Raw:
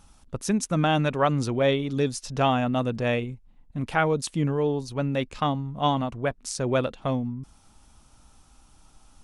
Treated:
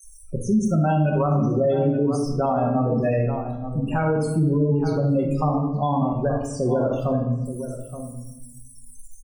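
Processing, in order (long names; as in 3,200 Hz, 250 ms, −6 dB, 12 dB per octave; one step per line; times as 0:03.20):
spike at every zero crossing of −21.5 dBFS
spectral peaks only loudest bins 32
high-shelf EQ 8,400 Hz −4.5 dB
gate on every frequency bin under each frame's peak −15 dB strong
slap from a distant wall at 150 metres, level −13 dB
convolution reverb RT60 0.85 s, pre-delay 5 ms, DRR 0 dB
brickwall limiter −16.5 dBFS, peak gain reduction 9.5 dB
high-shelf EQ 2,600 Hz −12 dB
level +4 dB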